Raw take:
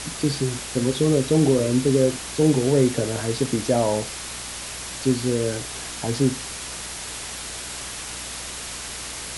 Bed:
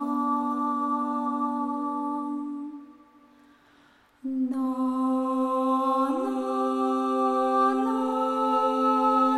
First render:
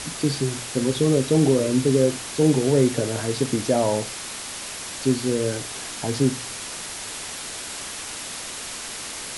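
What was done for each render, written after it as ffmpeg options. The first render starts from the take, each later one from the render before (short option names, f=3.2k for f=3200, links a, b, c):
-af "bandreject=f=60:t=h:w=4,bandreject=f=120:t=h:w=4,bandreject=f=180:t=h:w=4"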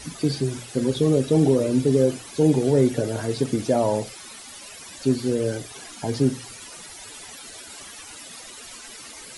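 -af "afftdn=nr=14:nf=-34"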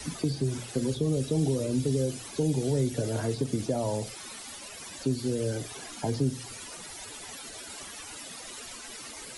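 -filter_complex "[0:a]acrossover=split=130|3000[a][b][c];[b]acompressor=threshold=-27dB:ratio=6[d];[a][d][c]amix=inputs=3:normalize=0,acrossover=split=260|1100[e][f][g];[g]alimiter=level_in=8.5dB:limit=-24dB:level=0:latency=1:release=326,volume=-8.5dB[h];[e][f][h]amix=inputs=3:normalize=0"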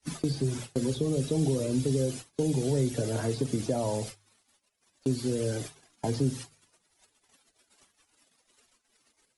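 -af "agate=range=-39dB:threshold=-38dB:ratio=16:detection=peak,bandreject=f=50.97:t=h:w=4,bandreject=f=101.94:t=h:w=4,bandreject=f=152.91:t=h:w=4"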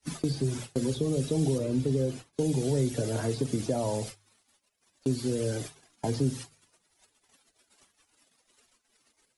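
-filter_complex "[0:a]asettb=1/sr,asplit=3[a][b][c];[a]atrim=end=1.584[d];[b]atrim=start=1.58:end=2.33,asetpts=PTS-STARTPTS,afade=t=in:d=0.004:c=qsin,afade=t=out:st=0.746:d=0.004:c=qsin,highshelf=f=4.2k:g=-10.5[e];[c]atrim=start=2.326[f];[d][e]acrossfade=d=0.004:c1=hsin:c2=qsin[g];[g][f]acrossfade=d=0.004:c1=qsin:c2=hsin"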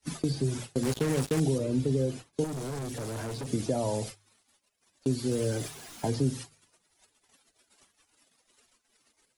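-filter_complex "[0:a]asettb=1/sr,asplit=3[a][b][c];[a]atrim=end=0.834[d];[b]atrim=start=0.83:end=1.4,asetpts=PTS-STARTPTS,afade=t=in:d=0.004:c=qsin,afade=t=out:st=0.566:d=0.004:c=qsin,acrusher=bits=4:mix=0:aa=0.5[e];[c]atrim=start=1.396[f];[d][e]acrossfade=d=0.004:c1=hsin:c2=qsin[g];[g][f]acrossfade=d=0.004:c1=qsin:c2=hsin,asettb=1/sr,asplit=3[h][i][j];[h]atrim=end=2.444[k];[i]atrim=start=2.44:end=3.51,asetpts=PTS-STARTPTS,afade=t=in:d=0.004:c=qsin,afade=t=out:st=1.066:d=0.004:c=qsin,asoftclip=type=hard:threshold=-33.5dB[l];[j]atrim=start=3.506[m];[k][l]acrossfade=d=0.004:c1=hsin:c2=qsin[n];[n][m]acrossfade=d=0.004:c1=qsin:c2=hsin,asettb=1/sr,asplit=3[o][p][q];[o]atrim=end=5.314[r];[p]atrim=start=5.31:end=6.08,asetpts=PTS-STARTPTS,afade=t=in:d=0.004:c=qsin,afade=t=out:st=0.766:d=0.004:c=qsin,aeval=exprs='val(0)+0.5*0.00794*sgn(val(0))':c=same[s];[q]atrim=start=6.076[t];[r][s]acrossfade=d=0.004:c1=hsin:c2=qsin[u];[u][t]acrossfade=d=0.004:c1=qsin:c2=hsin"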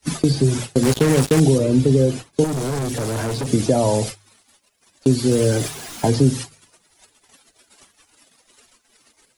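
-af "volume=12dB"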